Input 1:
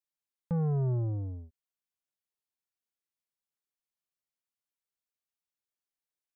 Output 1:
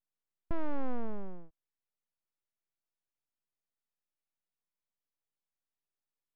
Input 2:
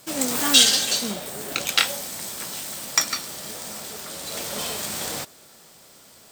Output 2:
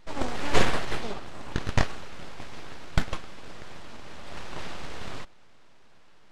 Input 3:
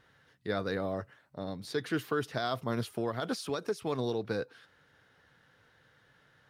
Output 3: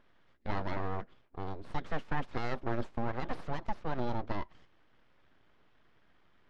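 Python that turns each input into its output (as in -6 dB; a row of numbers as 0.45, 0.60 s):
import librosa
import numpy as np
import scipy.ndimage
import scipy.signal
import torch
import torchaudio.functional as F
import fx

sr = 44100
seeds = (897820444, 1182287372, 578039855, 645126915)

y = np.abs(x)
y = fx.spacing_loss(y, sr, db_at_10k=28)
y = F.gain(torch.from_numpy(y), 2.5).numpy()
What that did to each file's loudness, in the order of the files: -9.5, -10.5, -3.5 LU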